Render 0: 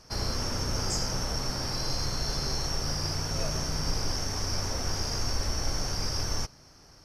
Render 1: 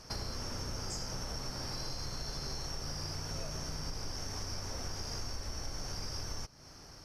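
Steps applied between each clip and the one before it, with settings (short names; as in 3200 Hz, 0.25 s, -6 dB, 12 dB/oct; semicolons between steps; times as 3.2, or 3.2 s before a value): compressor 4:1, threshold -40 dBFS, peak gain reduction 14.5 dB; gain +2 dB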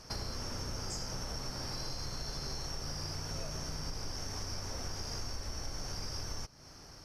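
nothing audible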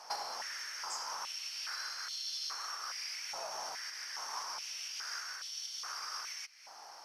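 stepped high-pass 2.4 Hz 820–3300 Hz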